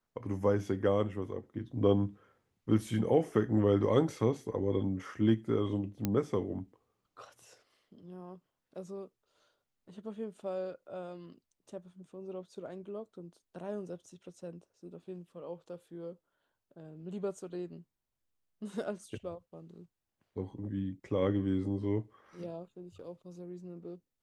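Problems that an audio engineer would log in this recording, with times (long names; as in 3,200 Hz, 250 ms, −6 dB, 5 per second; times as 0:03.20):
0:06.05: click −16 dBFS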